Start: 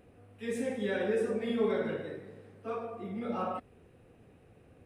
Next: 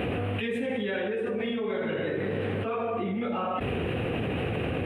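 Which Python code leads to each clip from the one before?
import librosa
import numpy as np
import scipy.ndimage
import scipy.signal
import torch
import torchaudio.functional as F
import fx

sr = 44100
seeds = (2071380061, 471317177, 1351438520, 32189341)

y = scipy.signal.sosfilt(scipy.signal.butter(2, 70.0, 'highpass', fs=sr, output='sos'), x)
y = fx.high_shelf_res(y, sr, hz=4100.0, db=-11.0, q=3.0)
y = fx.env_flatten(y, sr, amount_pct=100)
y = y * librosa.db_to_amplitude(-4.0)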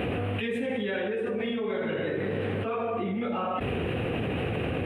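y = x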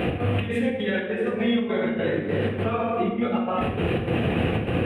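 y = fx.step_gate(x, sr, bpm=151, pattern='x.xx.xx.xx.xxxx', floor_db=-12.0, edge_ms=4.5)
y = fx.room_shoebox(y, sr, seeds[0], volume_m3=190.0, walls='mixed', distance_m=0.82)
y = y * librosa.db_to_amplitude(3.5)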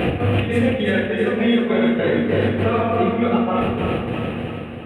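y = fx.fade_out_tail(x, sr, length_s=1.54)
y = fx.echo_feedback(y, sr, ms=330, feedback_pct=54, wet_db=-7)
y = y * librosa.db_to_amplitude(5.0)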